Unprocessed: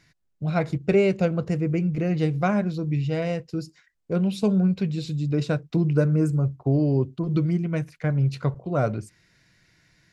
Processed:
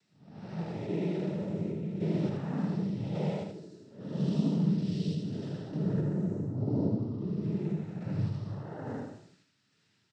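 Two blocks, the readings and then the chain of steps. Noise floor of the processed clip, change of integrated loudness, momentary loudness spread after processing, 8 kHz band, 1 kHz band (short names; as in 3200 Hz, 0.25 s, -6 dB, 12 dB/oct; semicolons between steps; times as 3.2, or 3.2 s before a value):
-72 dBFS, -8.5 dB, 11 LU, n/a, -13.0 dB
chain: time blur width 0.336 s; notch 4900 Hz; random-step tremolo; ten-band EQ 250 Hz +7 dB, 1000 Hz +5 dB, 2000 Hz -4 dB, 4000 Hz +9 dB; noise vocoder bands 12; on a send: echo 79 ms -5 dB; on the sum: gain -7.5 dB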